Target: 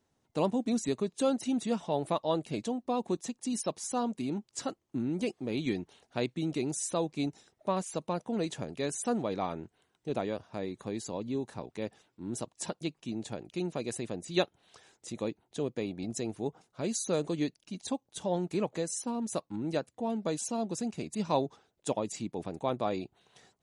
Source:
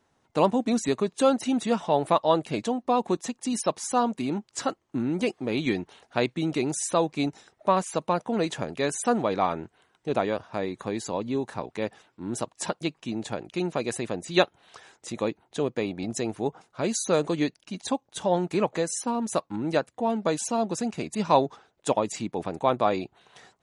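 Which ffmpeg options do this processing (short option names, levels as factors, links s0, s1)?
-af "equalizer=f=1300:t=o:w=2.4:g=-7.5,volume=0.631"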